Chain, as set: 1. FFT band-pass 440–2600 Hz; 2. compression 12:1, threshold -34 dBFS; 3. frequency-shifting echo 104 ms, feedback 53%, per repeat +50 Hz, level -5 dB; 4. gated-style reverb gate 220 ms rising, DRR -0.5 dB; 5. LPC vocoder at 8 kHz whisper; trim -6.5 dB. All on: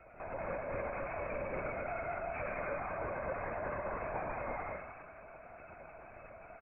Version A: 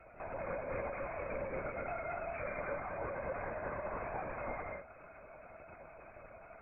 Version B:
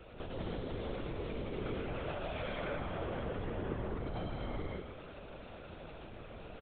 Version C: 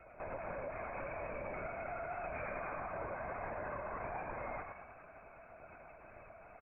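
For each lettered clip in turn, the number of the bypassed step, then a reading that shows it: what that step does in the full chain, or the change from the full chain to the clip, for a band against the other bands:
3, loudness change -1.5 LU; 1, 125 Hz band +10.5 dB; 4, 1 kHz band +1.5 dB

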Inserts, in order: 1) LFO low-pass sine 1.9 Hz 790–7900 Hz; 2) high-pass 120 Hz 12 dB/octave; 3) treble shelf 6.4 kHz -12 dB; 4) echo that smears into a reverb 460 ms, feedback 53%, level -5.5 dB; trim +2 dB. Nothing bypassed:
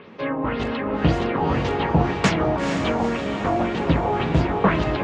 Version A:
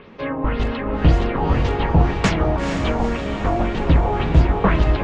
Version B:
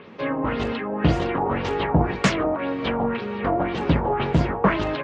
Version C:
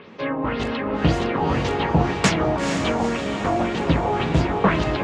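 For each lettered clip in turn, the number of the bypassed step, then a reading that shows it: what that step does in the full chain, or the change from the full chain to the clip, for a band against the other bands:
2, 125 Hz band +5.0 dB; 4, echo-to-direct -4.0 dB to none; 3, 8 kHz band +6.0 dB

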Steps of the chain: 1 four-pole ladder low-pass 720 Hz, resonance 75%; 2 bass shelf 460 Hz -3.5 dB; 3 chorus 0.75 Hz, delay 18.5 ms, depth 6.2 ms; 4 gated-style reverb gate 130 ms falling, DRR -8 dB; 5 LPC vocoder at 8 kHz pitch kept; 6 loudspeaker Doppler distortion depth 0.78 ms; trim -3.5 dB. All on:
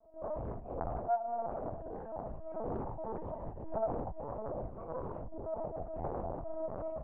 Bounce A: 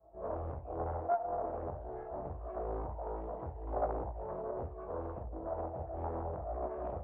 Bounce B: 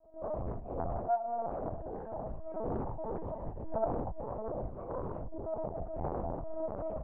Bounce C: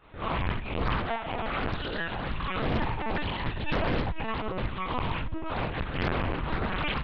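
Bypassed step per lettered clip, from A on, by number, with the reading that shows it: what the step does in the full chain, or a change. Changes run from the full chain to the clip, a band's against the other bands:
5, 250 Hz band -2.0 dB; 2, 125 Hz band +1.5 dB; 1, 500 Hz band -9.0 dB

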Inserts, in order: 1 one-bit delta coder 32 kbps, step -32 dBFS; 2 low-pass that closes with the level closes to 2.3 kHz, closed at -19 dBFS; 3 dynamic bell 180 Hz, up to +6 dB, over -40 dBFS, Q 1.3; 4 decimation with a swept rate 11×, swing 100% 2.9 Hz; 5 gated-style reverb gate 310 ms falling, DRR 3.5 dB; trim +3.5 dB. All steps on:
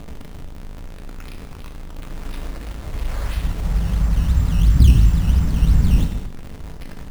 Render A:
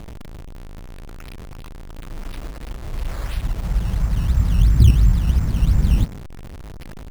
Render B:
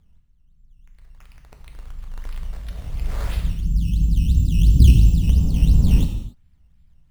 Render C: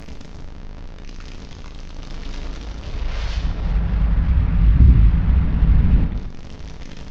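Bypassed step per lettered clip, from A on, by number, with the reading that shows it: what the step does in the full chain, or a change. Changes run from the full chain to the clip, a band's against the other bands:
5, momentary loudness spread change +1 LU; 1, 1 kHz band -7.0 dB; 4, distortion -21 dB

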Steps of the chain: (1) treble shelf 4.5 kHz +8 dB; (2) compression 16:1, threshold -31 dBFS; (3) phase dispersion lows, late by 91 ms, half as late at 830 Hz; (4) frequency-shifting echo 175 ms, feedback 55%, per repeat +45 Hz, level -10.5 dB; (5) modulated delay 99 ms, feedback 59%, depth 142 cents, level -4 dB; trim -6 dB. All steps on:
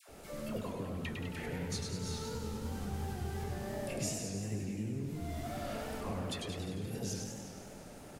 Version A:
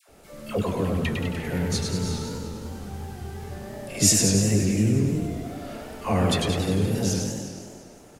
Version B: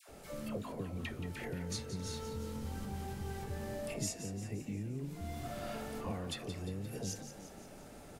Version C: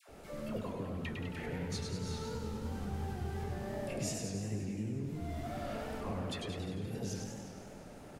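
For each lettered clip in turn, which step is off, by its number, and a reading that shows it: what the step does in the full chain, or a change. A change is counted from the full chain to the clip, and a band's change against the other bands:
2, mean gain reduction 8.5 dB; 5, crest factor change +1.5 dB; 1, 8 kHz band -3.0 dB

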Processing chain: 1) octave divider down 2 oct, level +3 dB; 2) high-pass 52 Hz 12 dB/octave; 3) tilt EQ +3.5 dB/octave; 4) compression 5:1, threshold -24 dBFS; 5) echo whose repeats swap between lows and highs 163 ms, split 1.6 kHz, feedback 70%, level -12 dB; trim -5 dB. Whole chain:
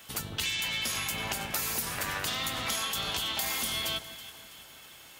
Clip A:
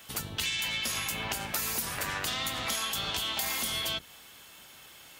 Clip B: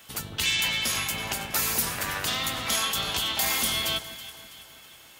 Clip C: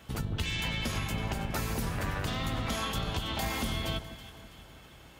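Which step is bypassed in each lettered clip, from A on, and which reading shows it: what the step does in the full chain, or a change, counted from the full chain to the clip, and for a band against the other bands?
5, momentary loudness spread change +4 LU; 4, mean gain reduction 3.0 dB; 3, 125 Hz band +11.5 dB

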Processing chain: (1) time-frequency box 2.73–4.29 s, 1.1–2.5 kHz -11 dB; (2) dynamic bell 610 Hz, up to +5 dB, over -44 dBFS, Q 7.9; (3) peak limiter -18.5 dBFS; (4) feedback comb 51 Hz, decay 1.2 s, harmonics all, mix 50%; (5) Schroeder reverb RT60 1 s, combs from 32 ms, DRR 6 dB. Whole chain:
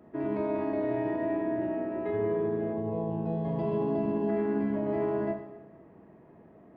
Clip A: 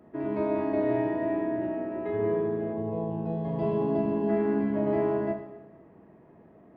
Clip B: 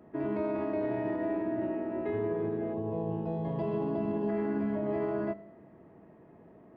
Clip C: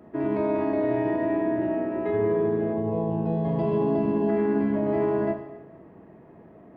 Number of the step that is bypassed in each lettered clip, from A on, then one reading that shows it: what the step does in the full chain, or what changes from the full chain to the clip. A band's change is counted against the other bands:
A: 3, crest factor change +2.0 dB; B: 5, loudness change -2.0 LU; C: 4, loudness change +5.0 LU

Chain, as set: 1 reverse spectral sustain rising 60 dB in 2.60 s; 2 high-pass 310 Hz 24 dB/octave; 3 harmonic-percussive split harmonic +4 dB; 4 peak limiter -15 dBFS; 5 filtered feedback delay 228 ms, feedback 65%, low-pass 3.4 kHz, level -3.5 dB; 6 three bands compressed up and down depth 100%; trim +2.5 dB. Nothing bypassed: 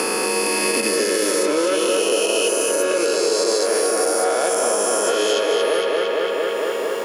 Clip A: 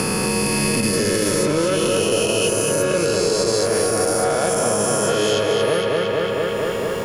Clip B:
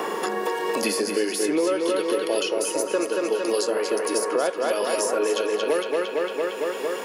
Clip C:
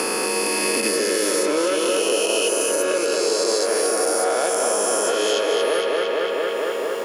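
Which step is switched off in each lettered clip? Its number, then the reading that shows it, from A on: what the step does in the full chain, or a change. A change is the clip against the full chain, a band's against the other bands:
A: 2, 250 Hz band +4.0 dB; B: 1, 8 kHz band -5.0 dB; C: 3, loudness change -1.5 LU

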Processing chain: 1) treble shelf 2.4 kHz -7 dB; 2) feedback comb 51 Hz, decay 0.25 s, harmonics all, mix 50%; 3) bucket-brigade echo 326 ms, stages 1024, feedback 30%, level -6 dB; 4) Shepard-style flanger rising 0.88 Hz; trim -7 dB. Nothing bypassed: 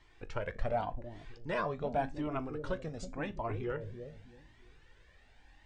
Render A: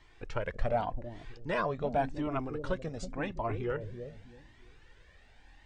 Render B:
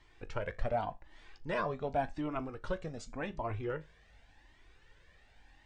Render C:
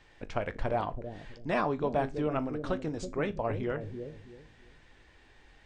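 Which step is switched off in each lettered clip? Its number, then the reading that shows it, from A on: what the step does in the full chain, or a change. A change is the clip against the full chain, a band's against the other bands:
2, loudness change +3.0 LU; 3, momentary loudness spread change -5 LU; 4, 250 Hz band +2.0 dB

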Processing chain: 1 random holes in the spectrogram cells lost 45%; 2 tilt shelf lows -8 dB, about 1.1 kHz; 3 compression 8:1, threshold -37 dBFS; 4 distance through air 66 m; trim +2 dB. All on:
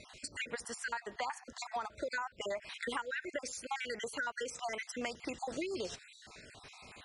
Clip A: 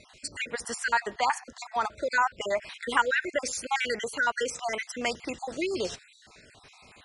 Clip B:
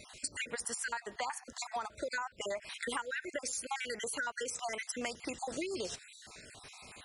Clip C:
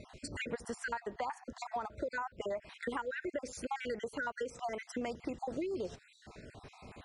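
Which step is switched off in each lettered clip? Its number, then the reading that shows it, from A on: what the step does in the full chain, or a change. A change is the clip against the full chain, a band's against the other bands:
3, mean gain reduction 6.5 dB; 4, 8 kHz band +6.5 dB; 2, crest factor change -2.5 dB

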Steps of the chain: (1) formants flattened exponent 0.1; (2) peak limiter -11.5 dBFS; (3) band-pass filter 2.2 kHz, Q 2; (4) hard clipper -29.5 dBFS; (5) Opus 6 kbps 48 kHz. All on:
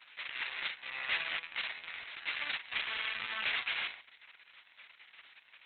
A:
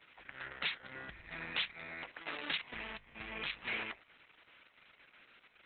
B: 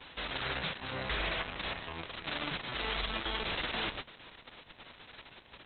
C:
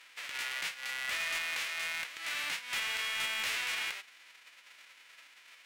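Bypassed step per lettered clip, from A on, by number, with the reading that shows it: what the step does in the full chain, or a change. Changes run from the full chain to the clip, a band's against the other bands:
1, 250 Hz band +13.5 dB; 3, 250 Hz band +15.0 dB; 5, crest factor change -11.5 dB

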